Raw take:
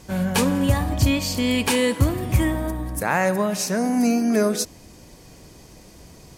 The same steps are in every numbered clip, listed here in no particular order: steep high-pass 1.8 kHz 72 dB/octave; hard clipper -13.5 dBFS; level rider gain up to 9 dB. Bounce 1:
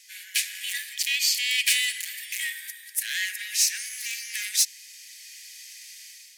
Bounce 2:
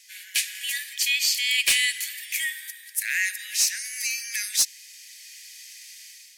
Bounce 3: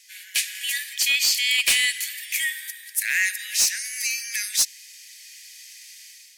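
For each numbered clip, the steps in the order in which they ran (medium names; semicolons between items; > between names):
level rider > hard clipper > steep high-pass; level rider > steep high-pass > hard clipper; steep high-pass > level rider > hard clipper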